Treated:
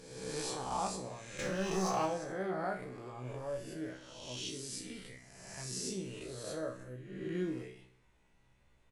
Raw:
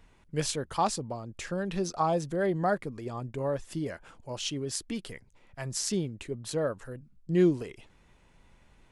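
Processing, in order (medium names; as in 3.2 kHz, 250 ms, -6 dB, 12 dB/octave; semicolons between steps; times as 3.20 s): reverse spectral sustain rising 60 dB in 1.28 s; 1.38–2.06 s: waveshaping leveller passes 2; feedback comb 63 Hz, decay 0.38 s, harmonics all, mix 90%; feedback delay 63 ms, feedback 59%, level -15 dB; trim -4 dB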